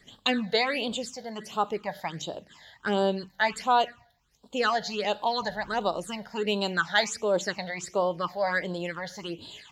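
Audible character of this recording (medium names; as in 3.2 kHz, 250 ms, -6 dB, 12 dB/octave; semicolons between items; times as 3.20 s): phasing stages 8, 1.4 Hz, lowest notch 330–2000 Hz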